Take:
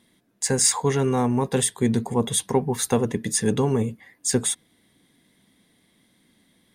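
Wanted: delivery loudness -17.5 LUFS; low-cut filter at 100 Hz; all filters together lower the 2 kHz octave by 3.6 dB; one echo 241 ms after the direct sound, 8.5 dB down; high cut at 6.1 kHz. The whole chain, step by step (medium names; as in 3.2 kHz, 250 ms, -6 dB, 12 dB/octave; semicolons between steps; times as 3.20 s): high-pass 100 Hz; low-pass 6.1 kHz; peaking EQ 2 kHz -4.5 dB; delay 241 ms -8.5 dB; trim +7 dB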